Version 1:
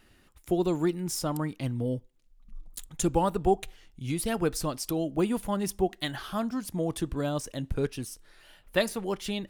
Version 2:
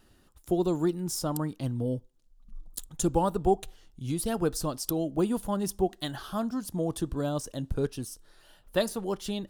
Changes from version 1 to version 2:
background +6.0 dB; master: add bell 2200 Hz -10.5 dB 0.69 oct

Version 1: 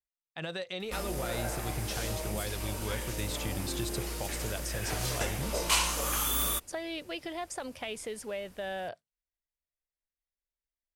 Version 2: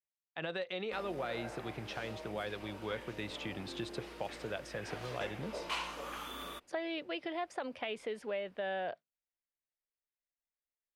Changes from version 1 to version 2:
background -7.5 dB; master: add three-band isolator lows -14 dB, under 180 Hz, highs -20 dB, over 3800 Hz

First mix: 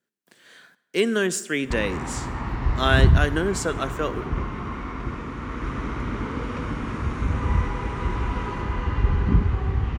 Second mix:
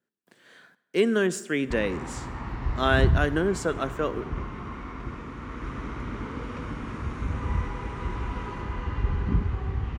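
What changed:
speech: add high shelf 2200 Hz -8 dB; background -5.5 dB

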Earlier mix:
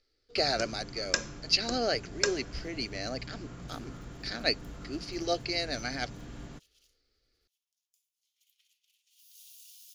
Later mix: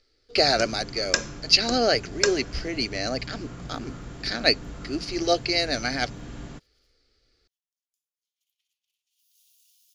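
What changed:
speech +8.0 dB; first sound +5.5 dB; second sound -9.5 dB

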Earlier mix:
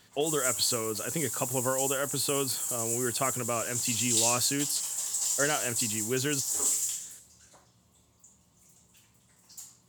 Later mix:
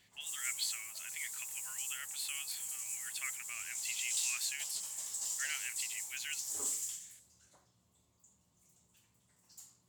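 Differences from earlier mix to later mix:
speech: add ladder high-pass 1900 Hz, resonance 60%; background -9.0 dB

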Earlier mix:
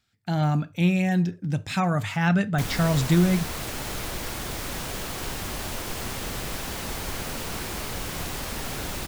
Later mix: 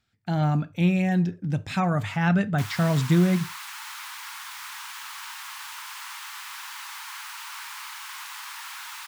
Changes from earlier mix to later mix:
background: add steep high-pass 890 Hz 72 dB/oct; master: add high shelf 3700 Hz -6.5 dB

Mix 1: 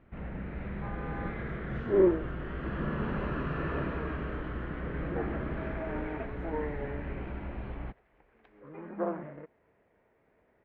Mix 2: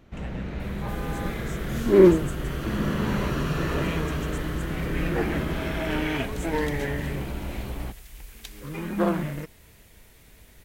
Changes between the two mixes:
speech +5.5 dB; second sound: remove band-pass 560 Hz, Q 1; master: remove ladder low-pass 2600 Hz, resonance 25%

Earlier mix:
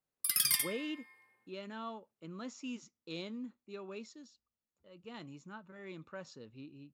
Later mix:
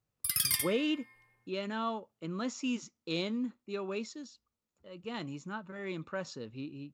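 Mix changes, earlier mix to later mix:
speech +8.5 dB; background: remove HPF 200 Hz 24 dB/oct

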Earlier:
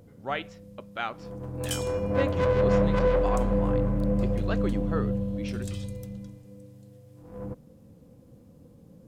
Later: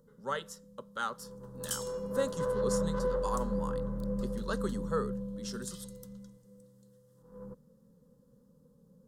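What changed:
speech: remove Gaussian blur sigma 1.9 samples; first sound -7.5 dB; master: add fixed phaser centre 470 Hz, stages 8

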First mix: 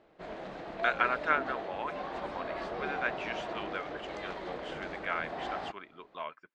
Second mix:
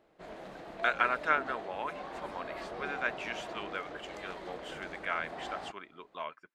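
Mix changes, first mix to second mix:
background -4.0 dB; master: remove LPF 5200 Hz 12 dB/oct

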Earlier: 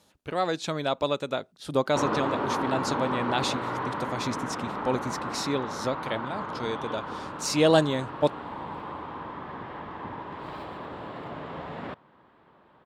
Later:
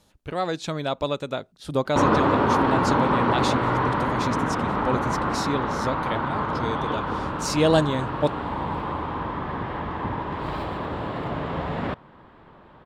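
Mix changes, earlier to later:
background +7.5 dB; master: remove HPF 190 Hz 6 dB/oct

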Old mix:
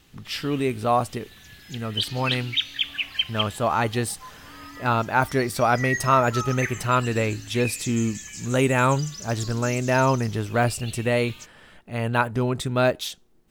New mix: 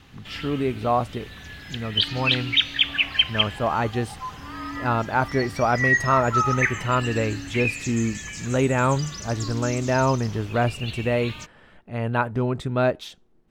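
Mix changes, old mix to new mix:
background +11.0 dB; master: add LPF 1800 Hz 6 dB/oct

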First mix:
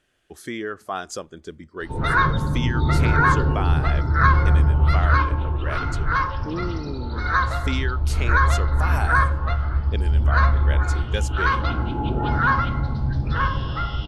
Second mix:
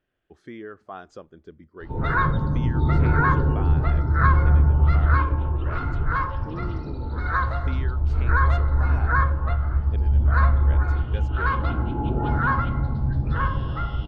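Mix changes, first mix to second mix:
speech -6.5 dB; master: add tape spacing loss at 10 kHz 29 dB

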